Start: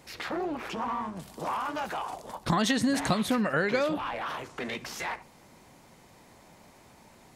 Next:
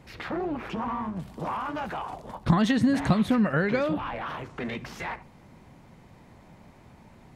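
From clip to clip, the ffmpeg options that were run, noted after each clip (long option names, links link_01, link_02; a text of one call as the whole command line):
ffmpeg -i in.wav -af "bass=frequency=250:gain=9,treble=frequency=4000:gain=-10" out.wav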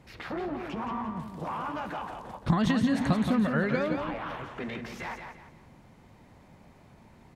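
ffmpeg -i in.wav -af "aecho=1:1:172|344|516|688:0.473|0.151|0.0485|0.0155,volume=-3.5dB" out.wav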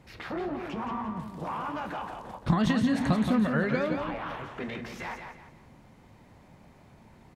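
ffmpeg -i in.wav -filter_complex "[0:a]asplit=2[link_01][link_02];[link_02]adelay=28,volume=-13.5dB[link_03];[link_01][link_03]amix=inputs=2:normalize=0" out.wav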